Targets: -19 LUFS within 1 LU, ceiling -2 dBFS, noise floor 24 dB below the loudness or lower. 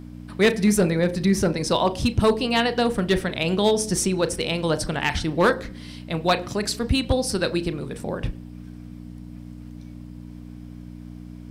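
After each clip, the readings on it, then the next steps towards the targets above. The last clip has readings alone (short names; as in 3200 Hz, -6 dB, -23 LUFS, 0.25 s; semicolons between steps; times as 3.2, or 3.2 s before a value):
clipped 0.4%; flat tops at -11.5 dBFS; hum 60 Hz; harmonics up to 300 Hz; hum level -38 dBFS; loudness -22.5 LUFS; peak -11.5 dBFS; loudness target -19.0 LUFS
-> clip repair -11.5 dBFS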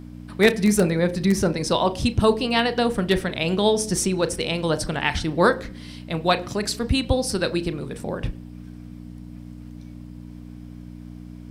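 clipped 0.0%; hum 60 Hz; harmonics up to 300 Hz; hum level -39 dBFS
-> de-hum 60 Hz, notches 5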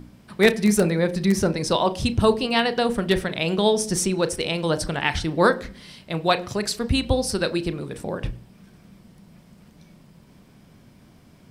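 hum none; loudness -22.5 LUFS; peak -4.0 dBFS; loudness target -19.0 LUFS
-> gain +3.5 dB; limiter -2 dBFS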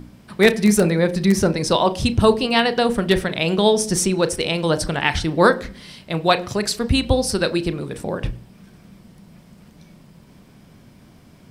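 loudness -19.0 LUFS; peak -2.0 dBFS; noise floor -49 dBFS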